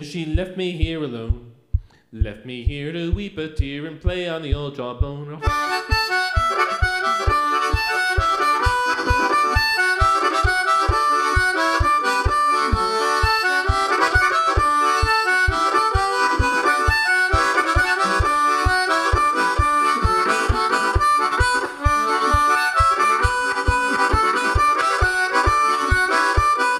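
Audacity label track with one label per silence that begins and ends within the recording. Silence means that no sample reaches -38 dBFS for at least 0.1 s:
1.510000	1.740000	silence
1.850000	2.130000	silence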